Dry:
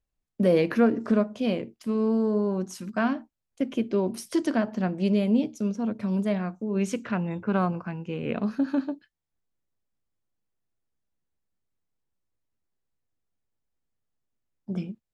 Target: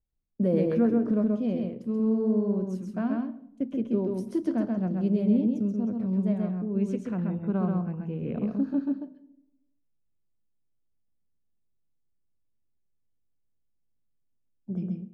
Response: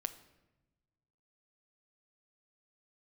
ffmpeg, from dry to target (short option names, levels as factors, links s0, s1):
-filter_complex "[0:a]tiltshelf=f=740:g=9,asplit=2[s0][s1];[1:a]atrim=start_sample=2205,asetrate=66150,aresample=44100,adelay=132[s2];[s1][s2]afir=irnorm=-1:irlink=0,volume=1.19[s3];[s0][s3]amix=inputs=2:normalize=0,volume=0.355"